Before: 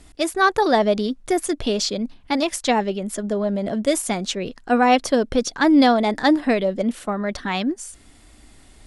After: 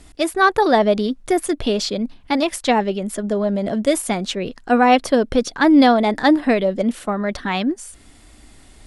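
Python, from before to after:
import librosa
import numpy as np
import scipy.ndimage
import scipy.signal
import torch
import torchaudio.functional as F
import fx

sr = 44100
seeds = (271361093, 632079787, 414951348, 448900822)

y = fx.dynamic_eq(x, sr, hz=6400.0, q=1.3, threshold_db=-43.0, ratio=4.0, max_db=-6)
y = F.gain(torch.from_numpy(y), 2.5).numpy()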